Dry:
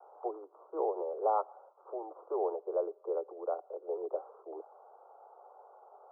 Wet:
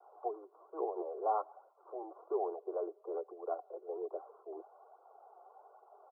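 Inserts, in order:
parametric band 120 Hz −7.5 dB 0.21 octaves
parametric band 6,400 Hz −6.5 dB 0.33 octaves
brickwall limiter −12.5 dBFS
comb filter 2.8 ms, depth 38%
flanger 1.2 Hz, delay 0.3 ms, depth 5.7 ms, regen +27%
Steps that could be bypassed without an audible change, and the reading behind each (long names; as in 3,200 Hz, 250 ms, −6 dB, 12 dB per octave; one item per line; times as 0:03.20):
parametric band 120 Hz: nothing at its input below 300 Hz
parametric band 6,400 Hz: nothing at its input above 1,400 Hz
brickwall limiter −12.5 dBFS: peak of its input −18.5 dBFS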